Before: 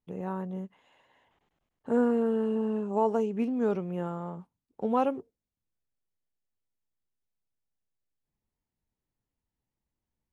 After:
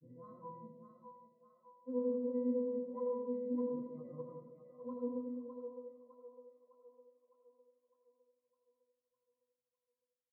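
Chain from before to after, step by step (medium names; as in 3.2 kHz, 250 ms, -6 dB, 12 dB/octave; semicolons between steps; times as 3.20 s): expander on every frequency bin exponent 1.5; high-pass 160 Hz; resonant high shelf 1.6 kHz -12.5 dB, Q 1.5; reverse; compression, threshold -36 dBFS, peak gain reduction 15 dB; reverse; granulator, pitch spread up and down by 3 st; pitch-class resonator B, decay 0.6 s; two-band feedback delay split 470 Hz, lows 205 ms, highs 607 ms, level -6 dB; on a send at -5.5 dB: reverberation RT60 0.55 s, pre-delay 50 ms; on the sum: trim +14.5 dB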